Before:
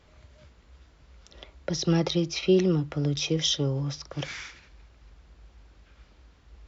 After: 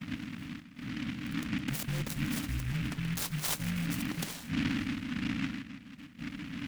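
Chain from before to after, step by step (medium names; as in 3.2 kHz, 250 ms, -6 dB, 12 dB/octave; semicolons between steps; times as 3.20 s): wind noise 140 Hz -30 dBFS; gate -43 dBFS, range -11 dB; frequency shift -310 Hz; bucket-brigade echo 160 ms, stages 4096, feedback 61%, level -13.5 dB; reverse; compression 6:1, threshold -29 dBFS, peak gain reduction 15.5 dB; reverse; high-pass 80 Hz 6 dB/octave; delay time shaken by noise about 2 kHz, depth 0.24 ms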